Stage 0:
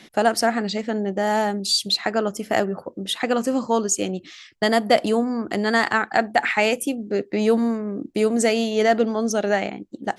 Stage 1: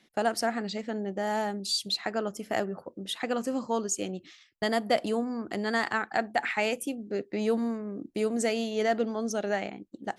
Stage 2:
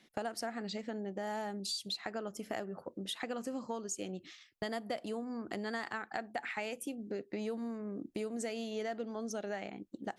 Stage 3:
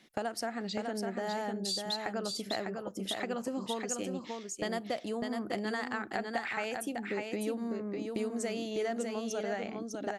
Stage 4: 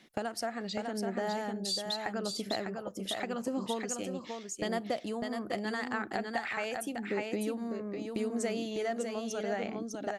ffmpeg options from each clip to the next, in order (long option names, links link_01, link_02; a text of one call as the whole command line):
ffmpeg -i in.wav -af "agate=range=-9dB:threshold=-41dB:ratio=16:detection=peak,volume=-8.5dB" out.wav
ffmpeg -i in.wav -af "acompressor=threshold=-36dB:ratio=4,volume=-1dB" out.wav
ffmpeg -i in.wav -af "aecho=1:1:601:0.596,volume=3dB" out.wav
ffmpeg -i in.wav -af "aphaser=in_gain=1:out_gain=1:delay=1.8:decay=0.23:speed=0.83:type=sinusoidal" out.wav